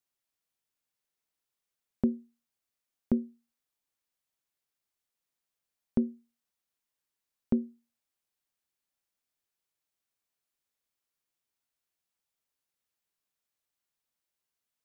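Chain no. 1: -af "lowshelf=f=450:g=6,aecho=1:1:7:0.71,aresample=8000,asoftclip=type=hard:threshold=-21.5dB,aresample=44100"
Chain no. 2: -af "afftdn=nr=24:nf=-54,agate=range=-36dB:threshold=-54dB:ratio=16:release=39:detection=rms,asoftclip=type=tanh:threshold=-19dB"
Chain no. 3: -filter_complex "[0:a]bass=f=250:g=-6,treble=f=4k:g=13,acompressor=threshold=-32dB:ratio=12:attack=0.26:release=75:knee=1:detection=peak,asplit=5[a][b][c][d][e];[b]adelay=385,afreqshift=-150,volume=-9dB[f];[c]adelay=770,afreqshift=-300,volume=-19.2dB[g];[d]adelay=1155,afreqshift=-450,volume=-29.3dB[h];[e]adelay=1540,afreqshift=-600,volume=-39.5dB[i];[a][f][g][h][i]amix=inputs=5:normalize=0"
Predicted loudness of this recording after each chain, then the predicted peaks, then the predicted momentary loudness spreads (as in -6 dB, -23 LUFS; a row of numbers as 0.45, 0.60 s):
-33.0, -35.0, -46.0 LUFS; -21.0, -19.5, -27.5 dBFS; 10, 11, 21 LU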